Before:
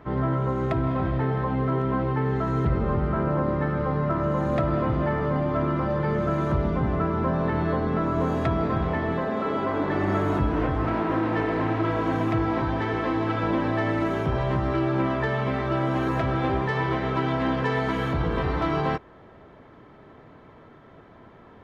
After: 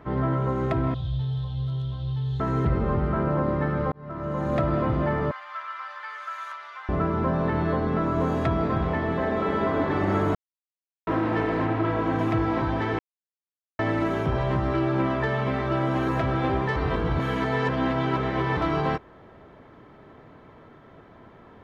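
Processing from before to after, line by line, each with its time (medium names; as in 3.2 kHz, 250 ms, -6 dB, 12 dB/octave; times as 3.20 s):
0.94–2.40 s: FFT filter 140 Hz 0 dB, 210 Hz -26 dB, 620 Hz -18 dB, 1.5 kHz -22 dB, 2.2 kHz -23 dB, 3.5 kHz +12 dB, 5.2 kHz -1 dB
3.92–4.58 s: fade in
5.31–6.89 s: high-pass 1.2 kHz 24 dB/octave
8.90–9.41 s: echo throw 290 ms, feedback 80%, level -5.5 dB
10.35–11.07 s: mute
11.66–12.19 s: low-pass 3.9 kHz 6 dB/octave
12.99–13.79 s: mute
16.76–18.57 s: reverse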